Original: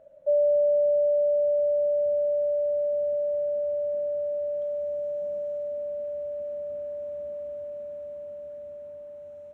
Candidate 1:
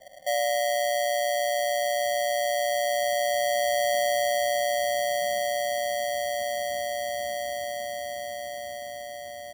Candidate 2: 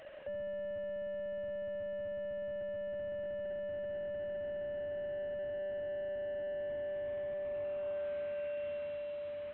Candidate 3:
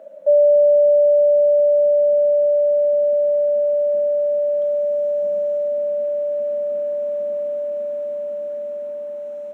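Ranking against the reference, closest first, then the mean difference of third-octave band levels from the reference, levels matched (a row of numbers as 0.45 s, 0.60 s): 3, 2, 1; 1.0 dB, 10.0 dB, 14.0 dB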